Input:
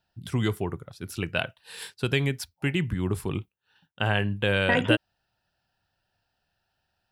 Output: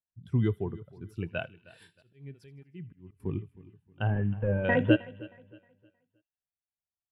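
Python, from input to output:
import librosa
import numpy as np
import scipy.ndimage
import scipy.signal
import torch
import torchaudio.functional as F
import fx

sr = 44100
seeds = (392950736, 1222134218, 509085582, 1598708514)

p1 = fx.delta_mod(x, sr, bps=16000, step_db=-36.0, at=(4.07, 4.65))
p2 = p1 + fx.echo_feedback(p1, sr, ms=313, feedback_pct=47, wet_db=-14, dry=0)
p3 = fx.auto_swell(p2, sr, attack_ms=556.0, at=(1.74, 3.2))
p4 = fx.high_shelf(p3, sr, hz=2400.0, db=-6.0)
p5 = fx.echo_wet_highpass(p4, sr, ms=79, feedback_pct=66, hz=2100.0, wet_db=-14.0)
y = fx.spectral_expand(p5, sr, expansion=1.5)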